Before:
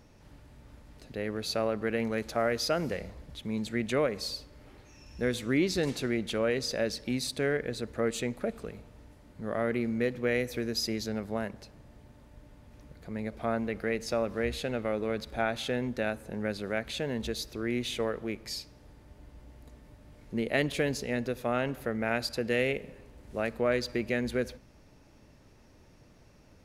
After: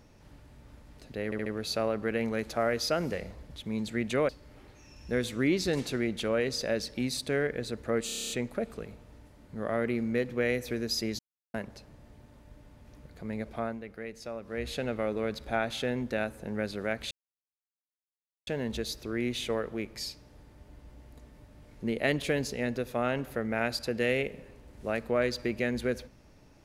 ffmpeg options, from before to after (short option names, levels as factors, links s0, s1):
-filter_complex "[0:a]asplit=18[s0][s1][s2][s3][s4][s5][s6][s7][s8][s9][s10][s11][s12][s13][s14][s15][s16][s17];[s0]atrim=end=1.322[s18];[s1]atrim=start=1.248:end=1.322[s19];[s2]atrim=start=1.248:end=1.322[s20];[s3]atrim=start=1.248:end=4.082[s21];[s4]atrim=start=4.388:end=8.192[s22];[s5]atrim=start=8.158:end=8.192[s23];[s6]atrim=start=8.158:end=8.192[s24];[s7]atrim=start=8.158:end=8.192[s25];[s8]atrim=start=8.158:end=8.192[s26];[s9]atrim=start=8.158:end=8.192[s27];[s10]atrim=start=8.158:end=8.192[s28];[s11]atrim=start=8.158:end=8.192[s29];[s12]atrim=start=8.158:end=11.05,asetpts=PTS-STARTPTS,afade=t=out:st=2.888:d=0.004:c=hsin[s30];[s13]atrim=start=11.05:end=11.4,asetpts=PTS-STARTPTS,volume=0[s31];[s14]atrim=start=11.4:end=13.67,asetpts=PTS-STARTPTS,afade=t=in:d=0.004:c=hsin,afade=t=out:st=1.95:d=0.32:silence=0.334965[s32];[s15]atrim=start=13.67:end=14.31,asetpts=PTS-STARTPTS,volume=0.335[s33];[s16]atrim=start=14.31:end=16.97,asetpts=PTS-STARTPTS,afade=t=in:d=0.32:silence=0.334965,afade=t=out:st=2.656:d=0.004:c=hsin,apad=pad_dur=1.36[s34];[s17]atrim=start=16.97,asetpts=PTS-STARTPTS,afade=t=in:d=0.004:c=hsin[s35];[s18][s19]acrossfade=d=0.004:c1=hsin:c2=hsin[s36];[s36][s20]acrossfade=d=0.004:c1=hsin:c2=hsin[s37];[s37][s21]acrossfade=d=0.004:c1=hsin:c2=hsin[s38];[s38][s22]acrossfade=d=0.004:c1=hsin:c2=hsin[s39];[s39][s23]acrossfade=d=0.004:c1=hsin:c2=hsin[s40];[s40][s24]acrossfade=d=0.004:c1=hsin:c2=hsin[s41];[s41][s25]acrossfade=d=0.004:c1=hsin:c2=hsin[s42];[s42][s26]acrossfade=d=0.004:c1=hsin:c2=hsin[s43];[s43][s27]acrossfade=d=0.004:c1=hsin:c2=hsin[s44];[s44][s28]acrossfade=d=0.004:c1=hsin:c2=hsin[s45];[s45][s29]acrossfade=d=0.004:c1=hsin:c2=hsin[s46];[s30][s31][s32][s33][s34][s35]concat=n=6:v=0:a=1[s47];[s46][s47]acrossfade=d=0.004:c1=hsin:c2=hsin"